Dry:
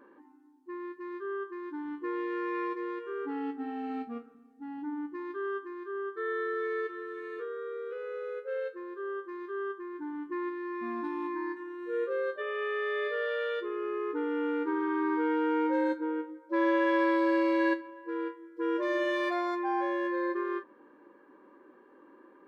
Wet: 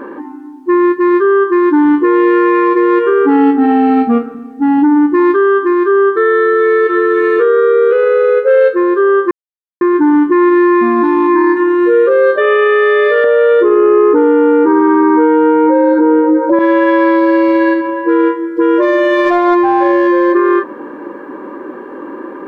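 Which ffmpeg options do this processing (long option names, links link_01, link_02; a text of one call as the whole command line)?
ffmpeg -i in.wav -filter_complex "[0:a]asettb=1/sr,asplit=3[link_01][link_02][link_03];[link_01]atrim=end=13.244[link_04];[link_02]atrim=start=13.24:end=16.59,asetpts=PTS-STARTPTS,afade=type=in:duration=0.004:curve=qsin,afade=type=out:start_time=3.346:duration=0.004:curve=qsin,equalizer=frequency=590:width=0.36:gain=15[link_05];[link_03]atrim=start=16.586[link_06];[link_04][link_05]acrossfade=duration=0.004:curve1=hsin:curve2=qsin[link_07];[link_07][link_06]acrossfade=duration=0.004:curve1=qsin:curve2=hsin,asettb=1/sr,asplit=3[link_08][link_09][link_10];[link_08]atrim=end=19.254[link_11];[link_09]atrim=start=19.25:end=20.33,asetpts=PTS-STARTPTS,afade=type=in:duration=0.004:curve=qsin,afade=type=out:start_time=1.076:duration=0.004:curve=qsin,adynamicsmooth=sensitivity=5:basefreq=1700[link_12];[link_10]atrim=start=20.326[link_13];[link_11][link_12]acrossfade=duration=0.004:curve1=hsin:curve2=qsin[link_14];[link_14][link_13]acrossfade=duration=0.004:curve1=qsin:curve2=hsin,asplit=3[link_15][link_16][link_17];[link_15]atrim=end=9.31,asetpts=PTS-STARTPTS,afade=type=out:start_time=9.306:duration=0.004:curve=hsin[link_18];[link_16]atrim=start=9.31:end=9.81,asetpts=PTS-STARTPTS,volume=0[link_19];[link_17]atrim=start=9.81,asetpts=PTS-STARTPTS,afade=type=in:duration=0.004:curve=hsin[link_20];[link_18][link_19][link_20]concat=n=3:v=0:a=1,highshelf=frequency=2600:gain=-10,acompressor=threshold=-32dB:ratio=2,alimiter=level_in=32.5dB:limit=-1dB:release=50:level=0:latency=1,volume=-2dB" out.wav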